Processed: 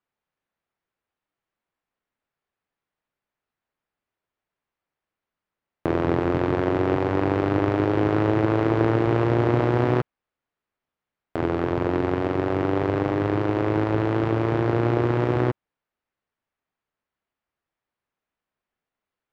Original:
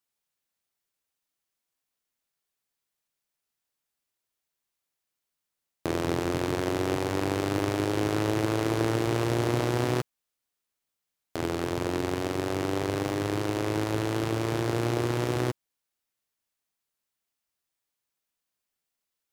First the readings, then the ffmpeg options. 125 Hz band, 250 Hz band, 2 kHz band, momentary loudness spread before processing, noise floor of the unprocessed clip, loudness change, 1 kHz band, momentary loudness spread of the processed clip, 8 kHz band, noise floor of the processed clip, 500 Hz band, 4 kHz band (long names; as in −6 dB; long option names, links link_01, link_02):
+6.0 dB, +6.0 dB, +3.0 dB, 4 LU, −85 dBFS, +5.5 dB, +5.5 dB, 4 LU, below −15 dB, below −85 dBFS, +6.0 dB, −5.0 dB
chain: -af "lowpass=1900,volume=6dB"